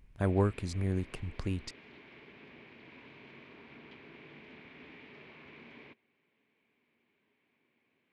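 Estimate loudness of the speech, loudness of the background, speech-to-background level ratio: −33.5 LKFS, −53.0 LKFS, 19.5 dB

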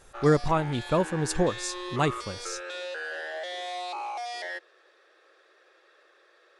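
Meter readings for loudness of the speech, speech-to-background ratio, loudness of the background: −27.0 LKFS, 9.5 dB, −36.5 LKFS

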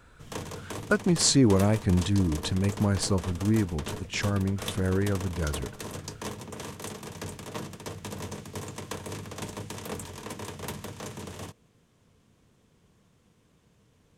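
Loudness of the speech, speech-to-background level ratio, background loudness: −26.0 LKFS, 12.5 dB, −38.5 LKFS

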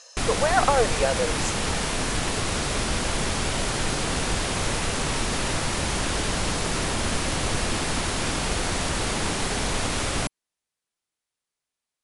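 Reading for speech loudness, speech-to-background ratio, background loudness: −25.0 LKFS, 0.5 dB, −25.5 LKFS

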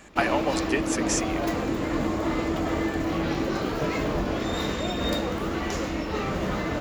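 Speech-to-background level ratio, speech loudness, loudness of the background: −1.0 dB, −28.5 LKFS, −27.5 LKFS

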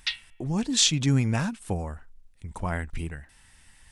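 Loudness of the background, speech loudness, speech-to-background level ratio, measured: −34.5 LKFS, −26.5 LKFS, 8.0 dB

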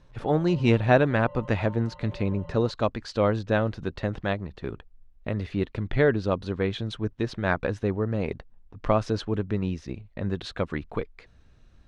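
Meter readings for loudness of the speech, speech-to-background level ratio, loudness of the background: −27.0 LKFS, 19.5 dB, −46.5 LKFS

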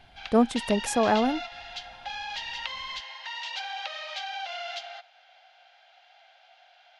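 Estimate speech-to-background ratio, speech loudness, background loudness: 10.0 dB, −25.5 LKFS, −35.5 LKFS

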